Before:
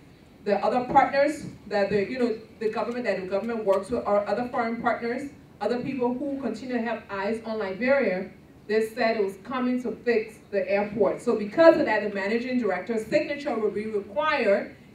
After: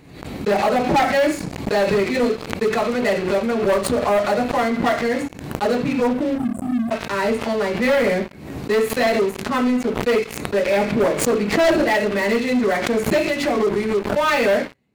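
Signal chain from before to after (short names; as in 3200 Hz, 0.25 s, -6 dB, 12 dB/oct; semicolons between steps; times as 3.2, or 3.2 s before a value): spectral delete 6.38–6.91, 300–7600 Hz; sample leveller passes 5; backwards sustainer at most 66 dB/s; gain -9.5 dB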